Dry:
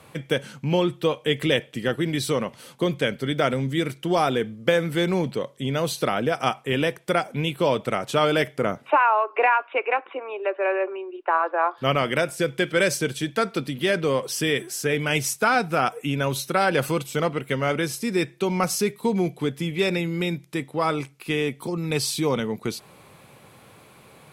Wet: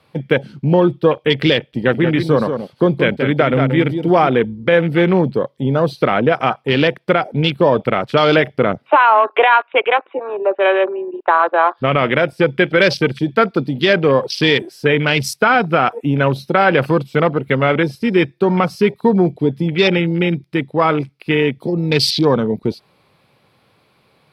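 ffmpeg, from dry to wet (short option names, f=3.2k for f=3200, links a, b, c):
-filter_complex "[0:a]asettb=1/sr,asplit=3[a][b][c];[a]atrim=end=1.704[d];[b]atrim=start=1.7:end=4.28,asetpts=PTS-STARTPTS,afade=t=in:d=0.004:c=qsin,afade=t=out:st=2.576:d=0.004:c=qsin,aecho=1:1:179:0.447,atrim=end_sample=113778[e];[c]atrim=start=4.276[f];[d][e]acrossfade=d=0.004:c1=hsin:c2=qsin[g];[g][f]acrossfade=d=0.004:c1=qsin:c2=hsin,afwtdn=0.0251,highshelf=f=5.7k:t=q:w=3:g=-6,alimiter=level_in=10.5dB:limit=-1dB:release=50:level=0:latency=1,volume=-1dB"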